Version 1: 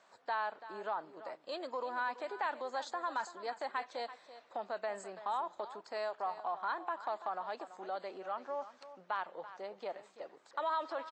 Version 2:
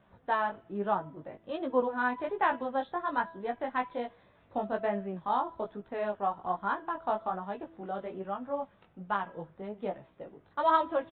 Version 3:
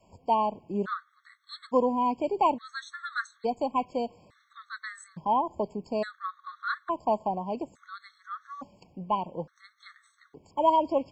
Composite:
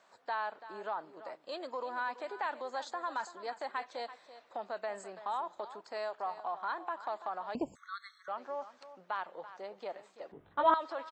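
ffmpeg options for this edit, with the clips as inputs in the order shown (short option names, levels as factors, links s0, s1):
-filter_complex "[0:a]asplit=3[s0][s1][s2];[s0]atrim=end=7.552[s3];[2:a]atrim=start=7.548:end=8.282[s4];[s1]atrim=start=8.278:end=10.322[s5];[1:a]atrim=start=10.318:end=10.742[s6];[s2]atrim=start=10.738[s7];[s3][s4]acrossfade=d=0.004:c1=hsin:c2=hsin[s8];[s8][s5]acrossfade=d=0.004:c1=hsin:c2=hsin[s9];[s9][s6]acrossfade=d=0.004:c1=hsin:c2=hsin[s10];[s10][s7]acrossfade=d=0.004:c1=hsin:c2=hsin"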